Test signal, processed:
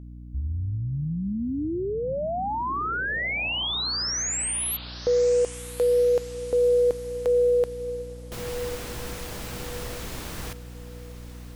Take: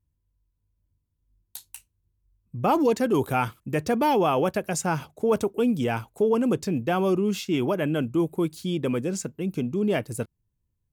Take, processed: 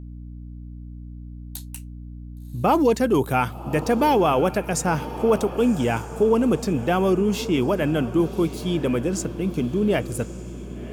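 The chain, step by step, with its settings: echo that smears into a reverb 1105 ms, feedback 44%, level -14 dB; hum 60 Hz, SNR 14 dB; trim +3 dB

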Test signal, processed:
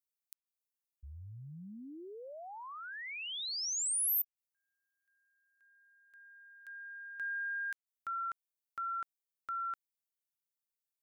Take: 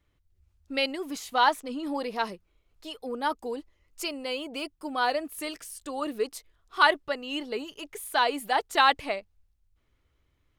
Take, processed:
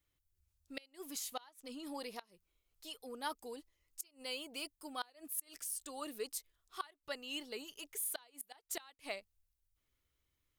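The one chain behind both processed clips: pre-emphasis filter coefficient 0.8; inverted gate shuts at -27 dBFS, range -28 dB

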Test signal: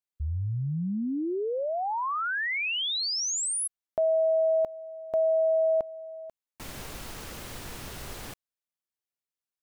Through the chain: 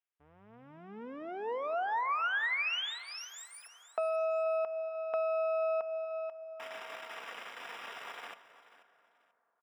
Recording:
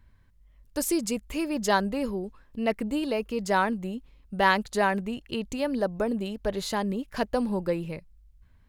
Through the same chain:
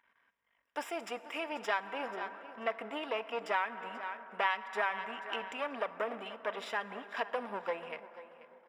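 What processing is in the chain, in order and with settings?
partial rectifier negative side -12 dB; high-pass 810 Hz 12 dB/octave; comb 4.3 ms, depth 32%; feedback delay 486 ms, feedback 25%, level -17 dB; plate-style reverb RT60 3.8 s, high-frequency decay 0.35×, DRR 14.5 dB; compression 3:1, threshold -35 dBFS; Savitzky-Golay filter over 25 samples; trim +5 dB

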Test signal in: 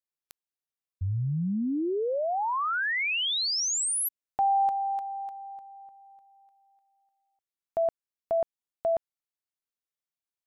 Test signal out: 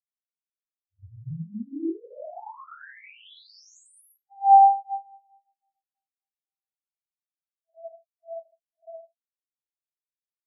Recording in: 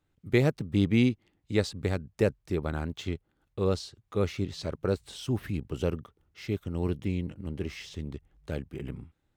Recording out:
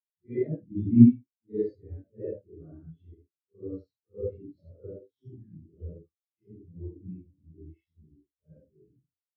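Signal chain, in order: phase randomisation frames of 200 ms; gated-style reverb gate 90 ms rising, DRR 0 dB; spectral contrast expander 2.5:1; trim +4.5 dB

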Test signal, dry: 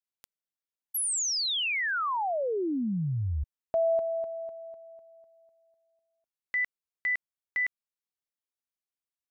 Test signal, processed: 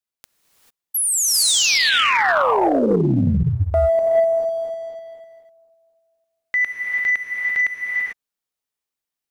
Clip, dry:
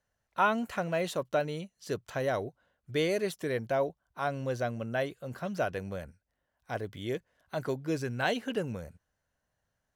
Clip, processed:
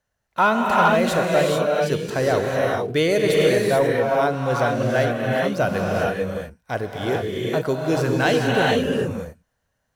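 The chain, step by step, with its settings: gated-style reverb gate 470 ms rising, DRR -2 dB; waveshaping leveller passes 1; trim +5.5 dB

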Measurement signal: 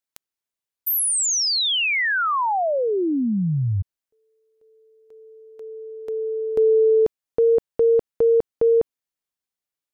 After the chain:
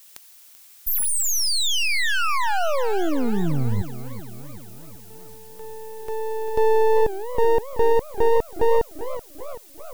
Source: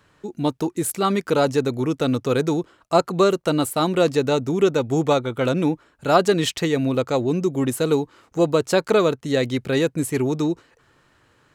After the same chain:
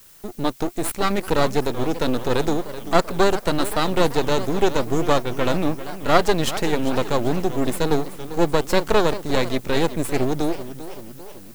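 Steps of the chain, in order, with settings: half-wave rectifier; added noise blue -52 dBFS; modulated delay 388 ms, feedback 57%, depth 218 cents, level -13.5 dB; trim +3 dB

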